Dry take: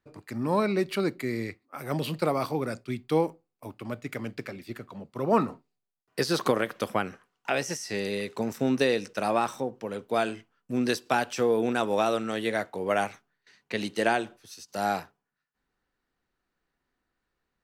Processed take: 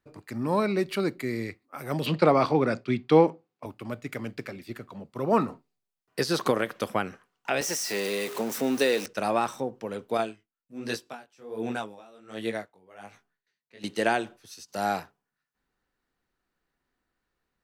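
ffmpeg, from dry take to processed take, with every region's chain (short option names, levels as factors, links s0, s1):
-filter_complex "[0:a]asettb=1/sr,asplit=3[s0][s1][s2];[s0]atrim=end=2.064[s3];[s1]atrim=start=2.06:end=3.66,asetpts=PTS-STARTPTS,afade=t=in:d=0.004:c=qsin,afade=t=out:st=1.596:d=0.004:c=qsin,acontrast=71,highpass=120,lowpass=4200[s4];[s2]atrim=start=3.656[s5];[s3][s4]acrossfade=d=0.004:c1=hsin:c2=qsin[s6];[s6][s5]acrossfade=d=0.004:c1=qsin:c2=hsin,asettb=1/sr,asplit=3[s7][s8][s9];[s7]atrim=end=7.614[s10];[s8]atrim=start=7.61:end=9.06,asetpts=PTS-STARTPTS,afade=t=in:d=0.004:c=qsin,afade=t=out:st=1.446:d=0.004:c=qsin,aeval=exprs='val(0)+0.5*0.0211*sgn(val(0))':c=same,highpass=250,highshelf=f=8300:g=5.5[s11];[s9]atrim=start=9.056[s12];[s10][s11]acrossfade=d=0.004:c1=hsin:c2=qsin[s13];[s13][s12]acrossfade=d=0.004:c1=qsin:c2=hsin,asettb=1/sr,asplit=3[s14][s15][s16];[s14]atrim=end=10.174[s17];[s15]atrim=start=10.17:end=13.84,asetpts=PTS-STARTPTS,afade=t=in:d=0.004:c=qsin,afade=t=out:st=3.666:d=0.004:c=qsin,flanger=delay=17.5:depth=5:speed=1.3,aeval=exprs='val(0)*pow(10,-24*(0.5-0.5*cos(2*PI*1.3*n/s))/20)':c=same[s18];[s16]atrim=start=13.836[s19];[s17][s18]acrossfade=d=0.004:c1=hsin:c2=qsin[s20];[s20][s19]acrossfade=d=0.004:c1=qsin:c2=hsin"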